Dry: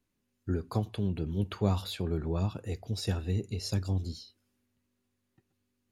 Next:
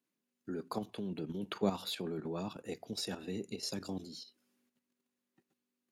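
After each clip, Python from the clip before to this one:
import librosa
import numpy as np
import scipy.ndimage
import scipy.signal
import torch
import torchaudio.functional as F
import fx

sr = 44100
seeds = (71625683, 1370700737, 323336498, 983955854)

y = scipy.signal.sosfilt(scipy.signal.butter(4, 180.0, 'highpass', fs=sr, output='sos'), x)
y = fx.level_steps(y, sr, step_db=10)
y = y * librosa.db_to_amplitude(2.0)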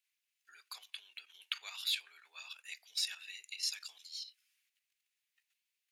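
y = fx.ladder_highpass(x, sr, hz=1900.0, resonance_pct=40)
y = y * librosa.db_to_amplitude(11.5)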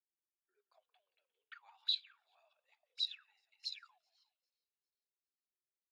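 y = fx.echo_split(x, sr, split_hz=2900.0, low_ms=177, high_ms=401, feedback_pct=52, wet_db=-13.5)
y = fx.auto_wah(y, sr, base_hz=350.0, top_hz=4000.0, q=20.0, full_db=-33.0, direction='up')
y = y * librosa.db_to_amplitude(7.5)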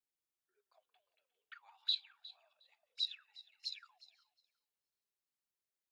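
y = fx.echo_feedback(x, sr, ms=360, feedback_pct=15, wet_db=-19)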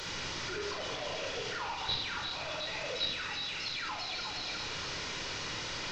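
y = fx.delta_mod(x, sr, bps=32000, step_db=-35.5)
y = fx.room_shoebox(y, sr, seeds[0], volume_m3=3100.0, walls='furnished', distance_m=4.7)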